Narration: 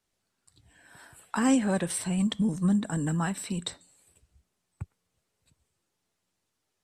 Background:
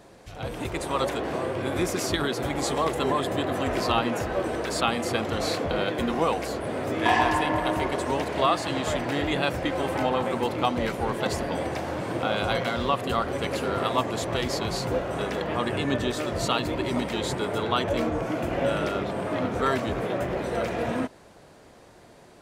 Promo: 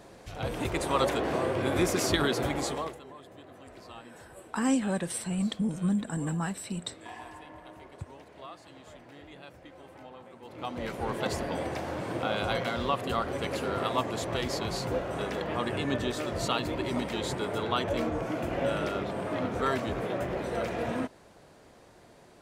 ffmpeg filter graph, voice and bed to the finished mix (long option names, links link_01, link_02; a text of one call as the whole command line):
ffmpeg -i stem1.wav -i stem2.wav -filter_complex "[0:a]adelay=3200,volume=-3dB[link_01];[1:a]volume=19dB,afade=type=out:start_time=2.37:duration=0.64:silence=0.0707946,afade=type=in:start_time=10.43:duration=0.73:silence=0.112202[link_02];[link_01][link_02]amix=inputs=2:normalize=0" out.wav